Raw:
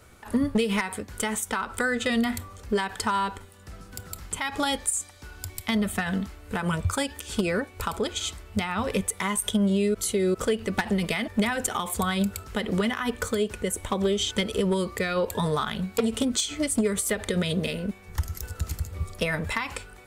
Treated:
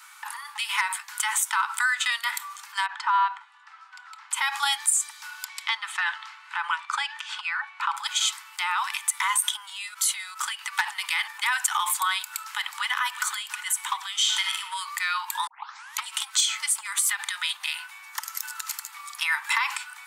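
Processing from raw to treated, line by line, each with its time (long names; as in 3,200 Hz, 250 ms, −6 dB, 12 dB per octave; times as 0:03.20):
0:02.86–0:04.31: head-to-tape spacing loss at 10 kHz 31 dB
0:05.43–0:07.96: low-pass filter 5,500 Hz → 2,500 Hz
0:12.19–0:12.86: delay throw 370 ms, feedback 75%, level −15 dB
0:14.20–0:14.60: thrown reverb, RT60 0.85 s, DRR 3.5 dB
0:15.47: tape start 0.56 s
whole clip: brickwall limiter −22 dBFS; Butterworth high-pass 850 Hz 96 dB per octave; level +9 dB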